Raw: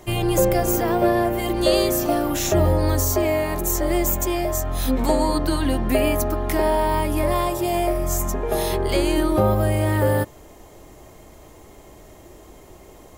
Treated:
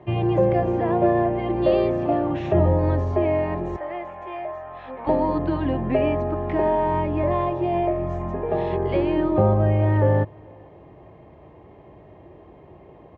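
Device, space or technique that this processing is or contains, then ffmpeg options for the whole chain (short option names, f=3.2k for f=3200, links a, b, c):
bass cabinet: -filter_complex "[0:a]highpass=47,asettb=1/sr,asplit=3[a][b][c];[a]atrim=end=3.764[d];[b]atrim=start=3.76:end=5.07,asetpts=PTS-STARTPTS,afade=t=in:d=0.004:c=qsin,afade=t=out:st=1.306:d=0.004:c=qsin,acrossover=split=600 3000:gain=0.0891 1 0.251[e][f][g];[e][f][g]amix=inputs=3:normalize=0[h];[c]atrim=start=5.066[i];[d][h]acrossfade=d=0.004:c1=hsin:c2=qsin[j];[j][i]acrossfade=d=0.004:c1=qsin:c2=hsin,highpass=66,equalizer=f=100:t=q:w=4:g=3,equalizer=f=150:t=q:w=4:g=5,equalizer=f=250:t=q:w=4:g=-3,equalizer=f=1.4k:t=q:w=4:g=-10,equalizer=f=2.1k:t=q:w=4:g=-5,lowpass=f=2.3k:w=0.5412,lowpass=f=2.3k:w=1.3066,asplit=2[k][l];[l]adelay=443.1,volume=-29dB,highshelf=f=4k:g=-9.97[m];[k][m]amix=inputs=2:normalize=0"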